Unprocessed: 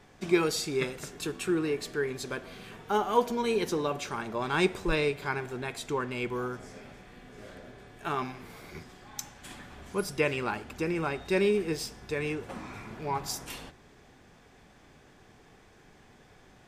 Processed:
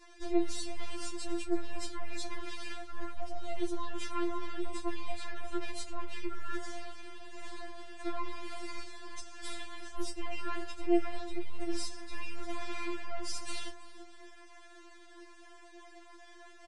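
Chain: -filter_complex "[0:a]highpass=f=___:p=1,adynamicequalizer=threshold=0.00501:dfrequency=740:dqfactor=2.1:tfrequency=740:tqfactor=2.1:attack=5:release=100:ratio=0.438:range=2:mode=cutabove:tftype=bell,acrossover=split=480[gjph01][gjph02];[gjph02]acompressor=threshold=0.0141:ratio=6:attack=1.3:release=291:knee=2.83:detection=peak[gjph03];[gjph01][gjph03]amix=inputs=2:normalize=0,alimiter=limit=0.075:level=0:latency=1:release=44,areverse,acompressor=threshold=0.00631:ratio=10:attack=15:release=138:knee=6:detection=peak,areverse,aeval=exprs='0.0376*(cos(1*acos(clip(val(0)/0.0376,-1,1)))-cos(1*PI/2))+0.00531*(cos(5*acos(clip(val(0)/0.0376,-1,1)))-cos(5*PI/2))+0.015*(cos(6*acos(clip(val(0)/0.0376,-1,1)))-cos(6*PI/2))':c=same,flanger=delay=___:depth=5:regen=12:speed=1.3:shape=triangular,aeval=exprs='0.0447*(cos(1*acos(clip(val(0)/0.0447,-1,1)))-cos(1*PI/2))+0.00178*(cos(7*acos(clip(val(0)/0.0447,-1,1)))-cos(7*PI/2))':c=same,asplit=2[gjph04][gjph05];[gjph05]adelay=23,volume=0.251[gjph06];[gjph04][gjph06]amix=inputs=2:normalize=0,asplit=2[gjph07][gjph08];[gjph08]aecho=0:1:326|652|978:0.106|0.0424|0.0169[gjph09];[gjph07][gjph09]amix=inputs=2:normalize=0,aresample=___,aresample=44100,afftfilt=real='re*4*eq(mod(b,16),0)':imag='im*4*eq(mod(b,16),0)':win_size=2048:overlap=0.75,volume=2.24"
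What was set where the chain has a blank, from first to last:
230, 0.6, 22050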